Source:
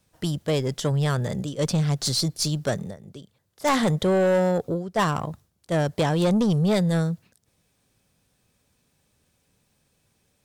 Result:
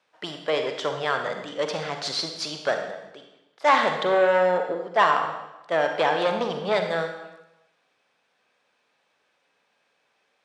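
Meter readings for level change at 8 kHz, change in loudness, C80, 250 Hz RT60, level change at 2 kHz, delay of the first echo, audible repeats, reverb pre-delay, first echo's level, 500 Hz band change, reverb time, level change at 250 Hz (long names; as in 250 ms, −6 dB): can't be measured, −0.5 dB, 7.5 dB, 0.85 s, +6.5 dB, no echo audible, no echo audible, 37 ms, no echo audible, +1.5 dB, 0.95 s, −11.5 dB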